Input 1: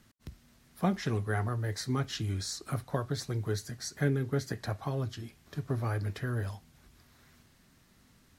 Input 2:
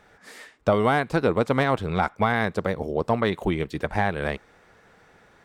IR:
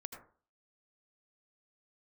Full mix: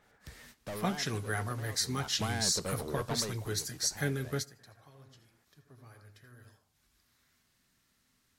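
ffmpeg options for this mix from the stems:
-filter_complex "[0:a]tiltshelf=f=1.3k:g=-5,acompressor=mode=upward:threshold=-42dB:ratio=2.5,adynamicequalizer=threshold=0.00398:dfrequency=3700:dqfactor=0.7:tfrequency=3700:tqfactor=0.7:attack=5:release=100:ratio=0.375:range=2.5:mode=boostabove:tftype=highshelf,volume=-1dB,asplit=2[a][b];[b]volume=-17dB[c];[1:a]asoftclip=type=tanh:threshold=-26dB,volume=1dB,afade=t=out:st=0.7:d=0.42:silence=0.446684,afade=t=in:st=1.97:d=0.27:silence=0.251189,afade=t=out:st=3.08:d=0.41:silence=0.251189,asplit=2[d][e];[e]apad=whole_len=369946[f];[a][f]sidechaingate=range=-33dB:threshold=-59dB:ratio=16:detection=peak[g];[2:a]atrim=start_sample=2205[h];[c][h]afir=irnorm=-1:irlink=0[i];[g][d][i]amix=inputs=3:normalize=0"

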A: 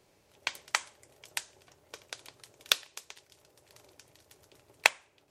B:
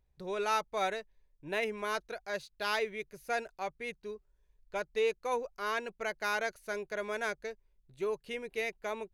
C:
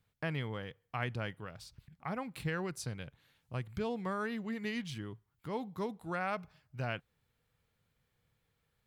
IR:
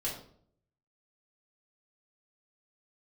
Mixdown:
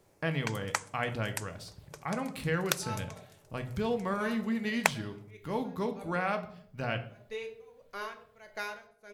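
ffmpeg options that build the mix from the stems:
-filter_complex "[0:a]equalizer=f=3.4k:w=1.1:g=-12,volume=1.5dB[a];[1:a]acompressor=threshold=-44dB:ratio=1.5,aeval=exprs='val(0)*pow(10,-26*(0.5-0.5*cos(2*PI*1.6*n/s))/20)':c=same,adelay=2350,volume=-1.5dB,asplit=2[b][c];[c]volume=-4dB[d];[2:a]volume=1dB,asplit=3[e][f][g];[f]volume=-6dB[h];[g]apad=whole_len=506646[i];[b][i]sidechaincompress=threshold=-42dB:ratio=8:attack=16:release=967[j];[3:a]atrim=start_sample=2205[k];[d][h]amix=inputs=2:normalize=0[l];[l][k]afir=irnorm=-1:irlink=0[m];[a][j][e][m]amix=inputs=4:normalize=0"

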